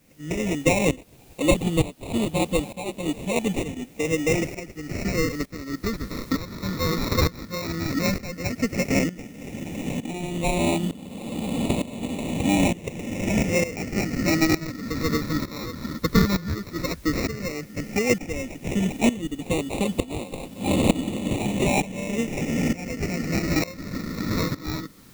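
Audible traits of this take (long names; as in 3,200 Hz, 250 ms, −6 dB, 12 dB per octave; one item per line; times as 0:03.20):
aliases and images of a low sample rate 1,600 Hz, jitter 0%
phaser sweep stages 6, 0.11 Hz, lowest notch 750–1,500 Hz
a quantiser's noise floor 10 bits, dither triangular
tremolo saw up 1.1 Hz, depth 85%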